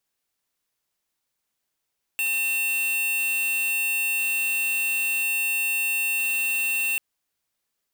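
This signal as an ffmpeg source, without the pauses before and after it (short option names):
-f lavfi -i "aevalsrc='0.0596*(2*lt(mod(2700*t,1),0.5)-1)':d=4.79:s=44100"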